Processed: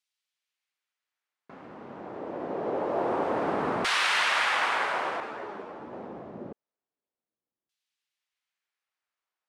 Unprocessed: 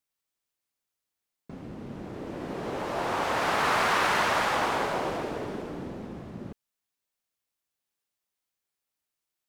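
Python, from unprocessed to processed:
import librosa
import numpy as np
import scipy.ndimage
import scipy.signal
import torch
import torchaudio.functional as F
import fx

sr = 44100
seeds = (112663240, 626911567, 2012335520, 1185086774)

y = fx.dynamic_eq(x, sr, hz=9100.0, q=2.2, threshold_db=-58.0, ratio=4.0, max_db=7)
y = fx.filter_lfo_bandpass(y, sr, shape='saw_down', hz=0.26, low_hz=240.0, high_hz=3800.0, q=0.99)
y = fx.ensemble(y, sr, at=(5.2, 5.93))
y = F.gain(torch.from_numpy(y), 5.5).numpy()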